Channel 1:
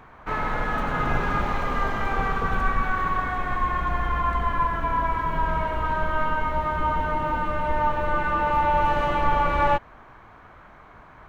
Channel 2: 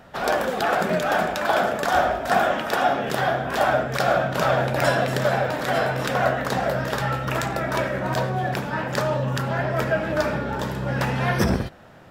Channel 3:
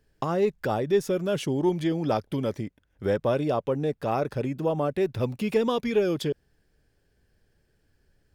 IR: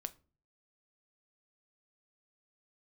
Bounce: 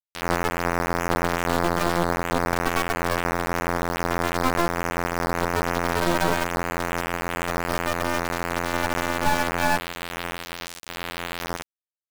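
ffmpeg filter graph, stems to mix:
-filter_complex "[0:a]volume=0.944,asplit=2[s0][s1];[s1]volume=0.282[s2];[1:a]alimiter=limit=0.158:level=0:latency=1:release=17,volume=0.794,asplit=2[s3][s4];[s4]volume=0.237[s5];[2:a]equalizer=f=310:w=1.7:g=11,alimiter=limit=0.126:level=0:latency=1,volume=1.33[s6];[3:a]atrim=start_sample=2205[s7];[s2][s5]amix=inputs=2:normalize=0[s8];[s8][s7]afir=irnorm=-1:irlink=0[s9];[s0][s3][s6][s9]amix=inputs=4:normalize=0,afftfilt=real='hypot(re,im)*cos(PI*b)':imag='0':win_size=2048:overlap=0.75,aeval=exprs='val(0)*gte(abs(val(0)),0.119)':c=same"

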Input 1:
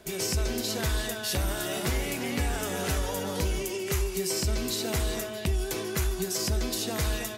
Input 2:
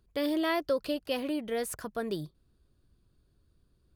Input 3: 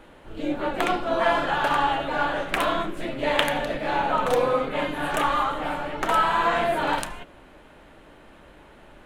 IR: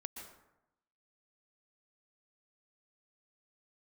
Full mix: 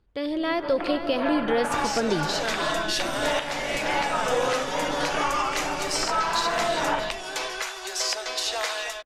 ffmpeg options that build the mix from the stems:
-filter_complex "[0:a]highpass=f=600:w=0.5412,highpass=f=600:w=1.3066,adelay=1650,volume=0.562[s0];[1:a]volume=0.841,asplit=3[s1][s2][s3];[s2]volume=0.501[s4];[s3]volume=0.237[s5];[2:a]afwtdn=0.02,volume=0.188,asplit=2[s6][s7];[s7]volume=0.178[s8];[3:a]atrim=start_sample=2205[s9];[s4][s9]afir=irnorm=-1:irlink=0[s10];[s5][s8]amix=inputs=2:normalize=0,aecho=0:1:470:1[s11];[s0][s1][s6][s10][s11]amix=inputs=5:normalize=0,lowpass=5500,dynaudnorm=f=270:g=7:m=4.73,alimiter=limit=0.211:level=0:latency=1:release=397"

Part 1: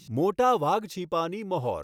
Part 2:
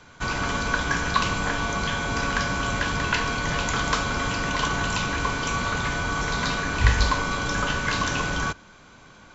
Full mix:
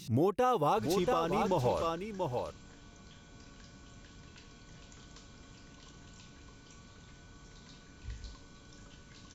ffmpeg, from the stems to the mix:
-filter_complex "[0:a]volume=1.33,asplit=3[s0][s1][s2];[s1]volume=0.355[s3];[1:a]acrossover=split=490|3000[s4][s5][s6];[s5]acompressor=threshold=0.00794:ratio=3[s7];[s4][s7][s6]amix=inputs=3:normalize=0,adelay=550,volume=0.15,asplit=2[s8][s9];[s9]volume=0.376[s10];[s2]apad=whole_len=436530[s11];[s8][s11]sidechaingate=range=0.0224:threshold=0.0141:ratio=16:detection=peak[s12];[s3][s10]amix=inputs=2:normalize=0,aecho=0:1:684:1[s13];[s0][s12][s13]amix=inputs=3:normalize=0,alimiter=limit=0.0944:level=0:latency=1:release=196"

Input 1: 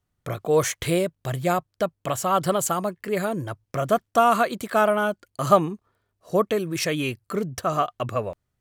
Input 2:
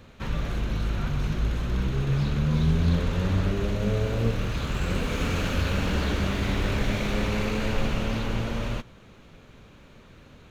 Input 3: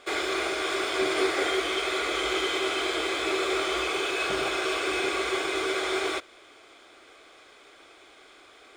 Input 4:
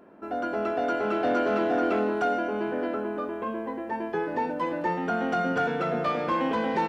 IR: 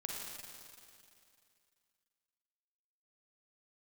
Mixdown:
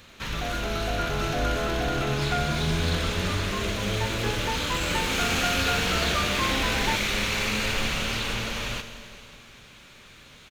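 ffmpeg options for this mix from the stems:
-filter_complex "[1:a]tiltshelf=f=1400:g=-3.5,volume=0.891,asplit=2[s0][s1];[s1]volume=0.708[s2];[2:a]acompressor=threshold=0.0355:ratio=6,tiltshelf=f=970:g=-5.5,adelay=2150,volume=0.299[s3];[3:a]adelay=100,volume=0.794[s4];[4:a]atrim=start_sample=2205[s5];[s2][s5]afir=irnorm=-1:irlink=0[s6];[s0][s3][s4][s6]amix=inputs=4:normalize=0,tiltshelf=f=1200:g=-4.5"

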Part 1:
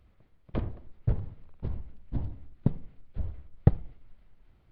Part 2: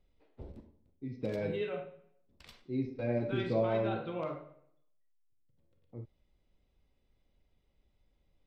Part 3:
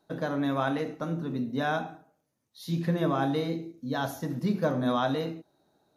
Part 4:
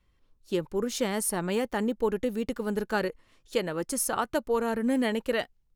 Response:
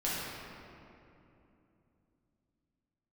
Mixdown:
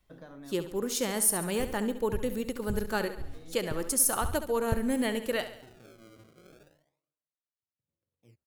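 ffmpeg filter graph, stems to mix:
-filter_complex "[0:a]aphaser=in_gain=1:out_gain=1:delay=3.5:decay=0.68:speed=0.62:type=triangular,adelay=1050,volume=0.266[s0];[1:a]highpass=f=76:w=0.5412,highpass=f=76:w=1.3066,acompressor=threshold=0.0158:ratio=6,acrusher=samples=28:mix=1:aa=0.000001:lfo=1:lforange=44.8:lforate=0.32,adelay=2300,volume=0.178[s1];[2:a]acompressor=threshold=0.0316:ratio=6,volume=0.2[s2];[3:a]highshelf=f=6400:g=11.5,volume=0.708,asplit=3[s3][s4][s5];[s4]volume=0.266[s6];[s5]apad=whole_len=263080[s7];[s2][s7]sidechaincompress=threshold=0.01:ratio=8:attack=16:release=534[s8];[s6]aecho=0:1:69|138|207|276|345|414|483:1|0.49|0.24|0.118|0.0576|0.0282|0.0138[s9];[s0][s1][s8][s3][s9]amix=inputs=5:normalize=0"

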